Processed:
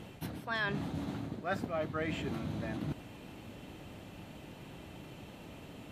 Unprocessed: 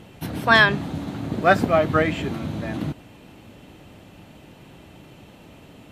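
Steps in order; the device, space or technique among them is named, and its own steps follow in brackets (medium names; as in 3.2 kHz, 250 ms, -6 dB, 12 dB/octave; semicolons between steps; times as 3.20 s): compression on the reversed sound (reverse; compression 4:1, threshold -32 dBFS, peak gain reduction 18.5 dB; reverse); trim -3 dB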